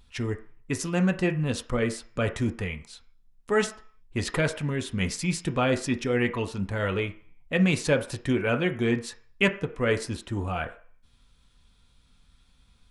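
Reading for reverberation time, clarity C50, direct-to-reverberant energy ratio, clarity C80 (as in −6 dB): 0.50 s, 13.5 dB, 5.0 dB, 17.0 dB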